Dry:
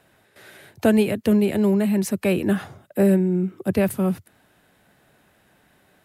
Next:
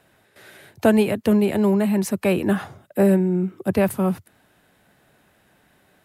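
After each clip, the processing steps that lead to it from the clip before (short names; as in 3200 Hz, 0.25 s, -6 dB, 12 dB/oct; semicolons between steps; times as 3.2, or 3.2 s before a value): dynamic EQ 950 Hz, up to +6 dB, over -39 dBFS, Q 1.3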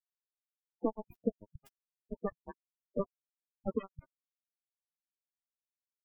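compressor 5:1, threshold -29 dBFS, peak gain reduction 16.5 dB; bit-crush 4-bit; loudest bins only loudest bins 8; gain +2.5 dB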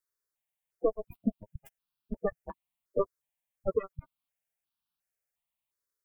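step phaser 2.8 Hz 770–2000 Hz; gain +8.5 dB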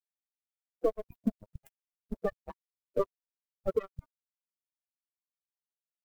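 G.711 law mismatch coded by A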